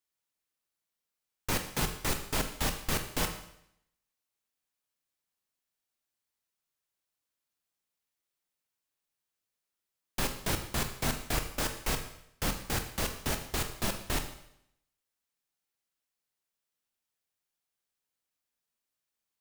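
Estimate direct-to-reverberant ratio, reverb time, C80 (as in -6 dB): 6.0 dB, 0.75 s, 11.5 dB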